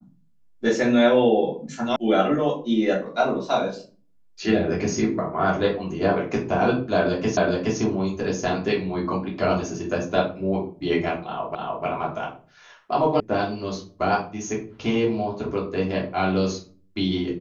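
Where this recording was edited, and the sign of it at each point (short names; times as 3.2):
1.96 sound cut off
7.37 repeat of the last 0.42 s
11.55 repeat of the last 0.3 s
13.2 sound cut off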